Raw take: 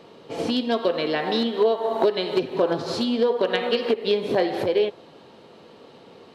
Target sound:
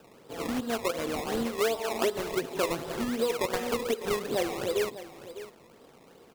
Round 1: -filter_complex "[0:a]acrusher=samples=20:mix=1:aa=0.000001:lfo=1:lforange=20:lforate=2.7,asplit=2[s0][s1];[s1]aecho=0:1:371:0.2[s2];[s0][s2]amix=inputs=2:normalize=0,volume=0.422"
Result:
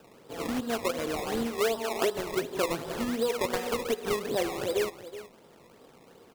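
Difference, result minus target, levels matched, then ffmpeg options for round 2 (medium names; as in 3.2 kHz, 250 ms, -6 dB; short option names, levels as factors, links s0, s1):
echo 231 ms early
-filter_complex "[0:a]acrusher=samples=20:mix=1:aa=0.000001:lfo=1:lforange=20:lforate=2.7,asplit=2[s0][s1];[s1]aecho=0:1:602:0.2[s2];[s0][s2]amix=inputs=2:normalize=0,volume=0.422"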